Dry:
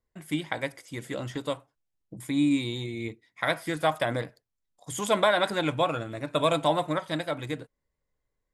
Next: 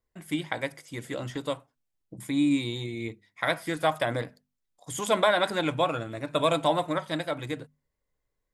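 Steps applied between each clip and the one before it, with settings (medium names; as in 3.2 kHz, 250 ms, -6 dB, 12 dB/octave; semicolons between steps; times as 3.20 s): hum notches 50/100/150/200/250 Hz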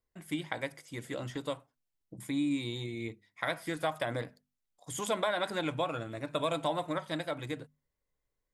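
compression 2:1, threshold -26 dBFS, peak gain reduction 5.5 dB; trim -4 dB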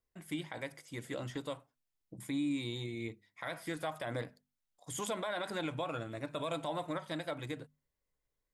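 peak limiter -25.5 dBFS, peak gain reduction 9 dB; trim -2 dB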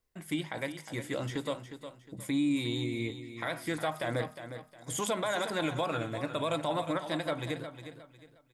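feedback delay 359 ms, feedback 31%, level -10.5 dB; trim +5.5 dB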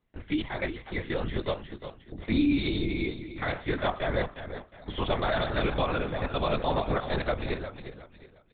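LPC vocoder at 8 kHz whisper; trim +4.5 dB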